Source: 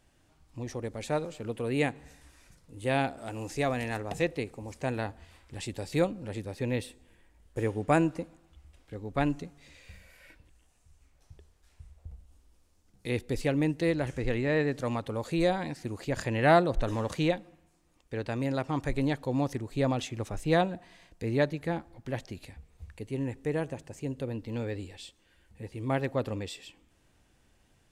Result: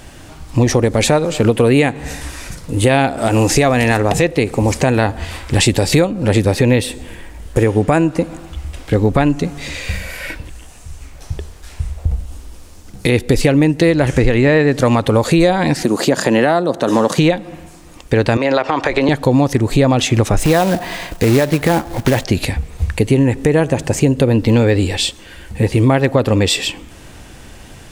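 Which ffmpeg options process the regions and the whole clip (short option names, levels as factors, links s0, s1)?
-filter_complex "[0:a]asettb=1/sr,asplit=3[s0][s1][s2];[s0]atrim=end=15.834[s3];[s1]atrim=start=15.83:end=17.18,asetpts=PTS-STARTPTS,afade=t=in:d=0.004:c=qsin,afade=t=out:st=1.346:d=0.004:c=qsin,highpass=f=170:w=0.5412,highpass=f=170:w=1.3066,equalizer=f=2300:w=2.2:g=-7[s4];[s2]atrim=start=17.176[s5];[s3][s4]acrossfade=d=0.004:c1=hsin:c2=qsin[s6];[s6][s5]acrossfade=d=0.004:c1=qsin:c2=hsin,asettb=1/sr,asplit=3[s7][s8][s9];[s7]atrim=end=18.374[s10];[s8]atrim=start=18.37:end=19.09,asetpts=PTS-STARTPTS,afade=t=in:d=0.004:c=qsin,afade=t=out:st=0.716:d=0.004:c=qsin,acrossover=split=370 5300:gain=0.1 1 0.0794[s11][s12][s13];[s11][s12][s13]amix=inputs=3:normalize=0,acompressor=threshold=0.0158:ratio=6:attack=3.2:release=140:knee=1:detection=peak[s14];[s9]atrim=start=19.086[s15];[s10][s14]acrossfade=d=0.004:c1=hsin:c2=qsin[s16];[s16][s15]acrossfade=d=0.004:c1=qsin:c2=hsin,asettb=1/sr,asplit=3[s17][s18][s19];[s17]atrim=end=20.414[s20];[s18]atrim=start=20.41:end=22.24,asetpts=PTS-STARTPTS,afade=t=in:d=0.004:c=qsin,afade=t=out:st=1.826:d=0.004:c=qsin,equalizer=f=860:t=o:w=2.4:g=4,acompressor=threshold=0.0562:ratio=4:attack=3.2:release=140:knee=1:detection=peak,acrusher=bits=3:mode=log:mix=0:aa=0.000001[s21];[s19]atrim=start=22.236[s22];[s20][s21]acrossfade=d=0.004:c1=hsin:c2=qsin[s23];[s23][s22]acrossfade=d=0.004:c1=qsin:c2=hsin,acompressor=threshold=0.0141:ratio=10,alimiter=level_in=31.6:limit=0.891:release=50:level=0:latency=1,volume=0.841"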